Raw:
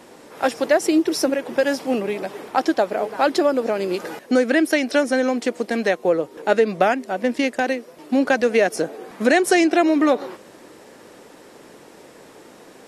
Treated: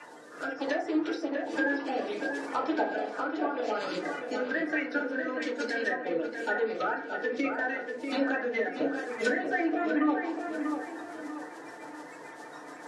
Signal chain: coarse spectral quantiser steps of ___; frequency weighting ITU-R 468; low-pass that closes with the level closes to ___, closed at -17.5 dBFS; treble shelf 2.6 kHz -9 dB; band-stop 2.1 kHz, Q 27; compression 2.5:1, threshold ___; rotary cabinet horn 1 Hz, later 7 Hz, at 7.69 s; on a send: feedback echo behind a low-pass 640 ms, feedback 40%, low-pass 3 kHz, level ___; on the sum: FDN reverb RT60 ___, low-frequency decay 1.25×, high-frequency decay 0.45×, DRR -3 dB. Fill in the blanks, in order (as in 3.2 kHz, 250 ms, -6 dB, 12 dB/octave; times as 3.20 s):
30 dB, 1.7 kHz, -35 dBFS, -6 dB, 0.46 s